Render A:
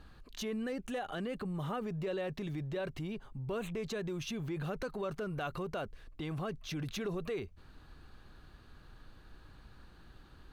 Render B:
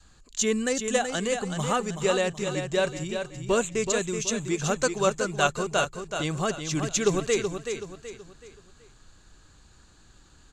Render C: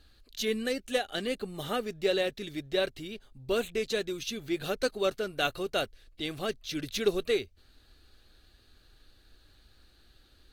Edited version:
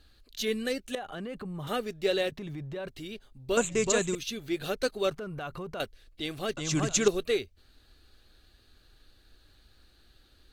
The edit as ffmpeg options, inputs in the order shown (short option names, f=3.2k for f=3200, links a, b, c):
-filter_complex "[0:a]asplit=3[a][b][c];[1:a]asplit=2[d][e];[2:a]asplit=6[f][g][h][i][j][k];[f]atrim=end=0.952[l];[a]atrim=start=0.948:end=1.672[m];[g]atrim=start=1.668:end=2.322[n];[b]atrim=start=2.318:end=2.882[o];[h]atrim=start=2.878:end=3.572[p];[d]atrim=start=3.568:end=4.152[q];[i]atrim=start=4.148:end=5.112[r];[c]atrim=start=5.108:end=5.802[s];[j]atrim=start=5.798:end=6.572[t];[e]atrim=start=6.568:end=7.082[u];[k]atrim=start=7.078[v];[l][m]acrossfade=d=0.004:c1=hsin:c2=hsin[w];[w][n]acrossfade=d=0.004:c1=hsin:c2=hsin[x];[x][o]acrossfade=d=0.004:c1=hsin:c2=hsin[y];[y][p]acrossfade=d=0.004:c1=hsin:c2=hsin[z];[z][q]acrossfade=d=0.004:c1=hsin:c2=hsin[aa];[aa][r]acrossfade=d=0.004:c1=hsin:c2=hsin[ab];[ab][s]acrossfade=d=0.004:c1=hsin:c2=hsin[ac];[ac][t]acrossfade=d=0.004:c1=hsin:c2=hsin[ad];[ad][u]acrossfade=d=0.004:c1=hsin:c2=hsin[ae];[ae][v]acrossfade=d=0.004:c1=hsin:c2=hsin"